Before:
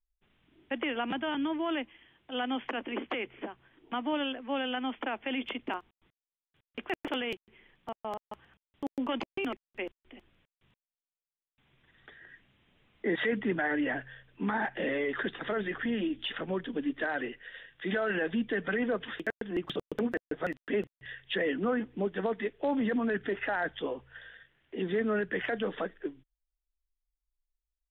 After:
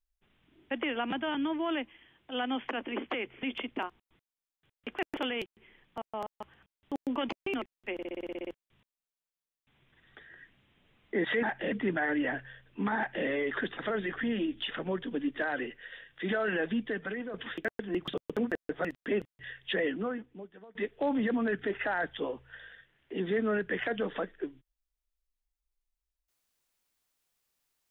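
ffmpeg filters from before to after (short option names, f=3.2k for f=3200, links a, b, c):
-filter_complex "[0:a]asplit=16[a][b][c][d][e][f][g][h][i][j][k][l][m][n][o][p];[a]atrim=end=3.432[q];[b]atrim=start=5.338:end=9.902[r];[c]atrim=start=9.838:end=9.902[s];[d]atrim=start=9.838:end=9.902[t];[e]atrim=start=9.838:end=9.902[u];[f]atrim=start=9.838:end=9.902[v];[g]atrim=start=9.838:end=9.902[w];[h]atrim=start=9.838:end=9.902[x];[i]atrim=start=9.838:end=9.902[y];[j]atrim=start=9.838:end=9.902[z];[k]atrim=start=9.838:end=9.902[aa];[l]atrim=start=10.438:end=13.342[ab];[m]atrim=start=14.588:end=14.882[ac];[n]atrim=start=13.338:end=18.96,asetpts=PTS-STARTPTS,afade=t=out:st=4.962:d=0.66:silence=0.281838[ad];[o]atrim=start=18.96:end=22.37,asetpts=PTS-STARTPTS,afade=t=in:d=0.004:c=hsin:silence=0.281838,afade=t=out:st=2.5:d=0.91:c=qua:silence=0.0749894[ae];[p]atrim=start=22.37,asetpts=PTS-STARTPTS,afade=t=in:d=0.004:c=hsin:silence=0.0749894[af];[q][r]acrossfade=d=0.004:c1=hsin:c2=hsin[ag];[ag][s]acrossfade=d=0.004:c1=hsin:c2=hsin[ah];[ah][t]acrossfade=d=0.004:c1=hsin:c2=hsin[ai];[ai][u]acrossfade=d=0.004:c1=hsin:c2=hsin[aj];[aj][v]acrossfade=d=0.004:c1=hsin:c2=hsin[ak];[ak][w]acrossfade=d=0.004:c1=hsin:c2=hsin[al];[al][x]acrossfade=d=0.004:c1=hsin:c2=hsin[am];[am][y]acrossfade=d=0.004:c1=hsin:c2=hsin[an];[an][z]acrossfade=d=0.004:c1=hsin:c2=hsin[ao];[ao][aa]acrossfade=d=0.004:c1=hsin:c2=hsin[ap];[ap][ab]acrossfade=d=0.004:c1=hsin:c2=hsin[aq];[aq][ac]acrossfade=d=0.004:c1=hsin:c2=hsin[ar];[ad][ae][af]concat=n=3:v=0:a=1[as];[ar][as]acrossfade=d=0.004:c1=hsin:c2=hsin"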